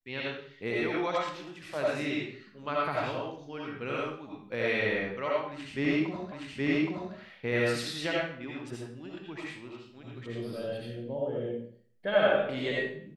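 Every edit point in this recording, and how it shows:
6.32 repeat of the last 0.82 s

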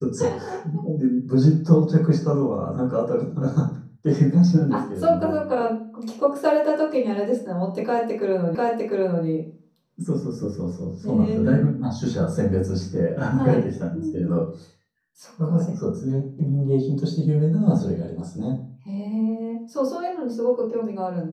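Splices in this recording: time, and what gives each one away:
8.55 repeat of the last 0.7 s

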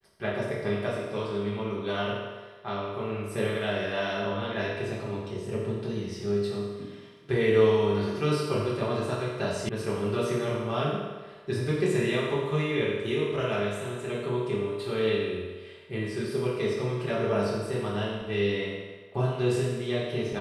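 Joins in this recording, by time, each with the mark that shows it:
9.69 sound cut off

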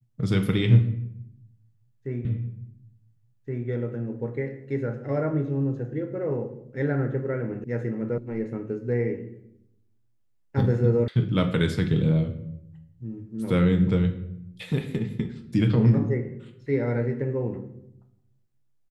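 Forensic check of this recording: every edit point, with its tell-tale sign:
2.25 repeat of the last 1.42 s
7.64 sound cut off
8.18 sound cut off
11.08 sound cut off

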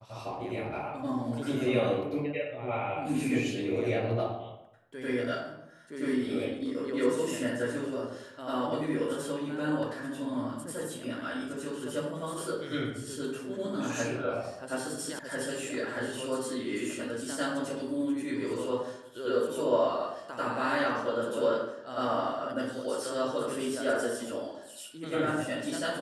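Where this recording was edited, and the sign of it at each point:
15.19 sound cut off

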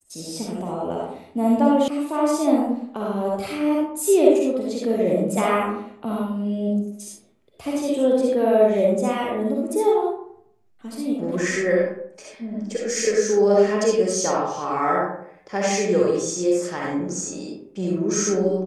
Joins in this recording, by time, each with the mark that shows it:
1.88 sound cut off

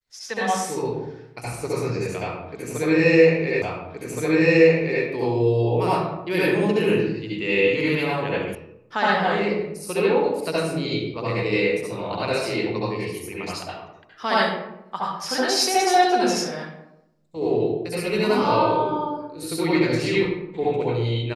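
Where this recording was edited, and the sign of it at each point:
3.62 repeat of the last 1.42 s
8.55 sound cut off

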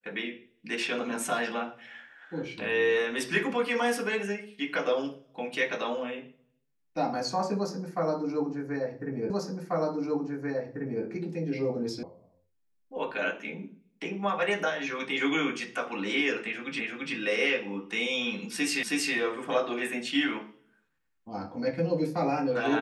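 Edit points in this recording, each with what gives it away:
9.3 repeat of the last 1.74 s
12.03 sound cut off
16.8 repeat of the last 0.34 s
18.83 repeat of the last 0.32 s

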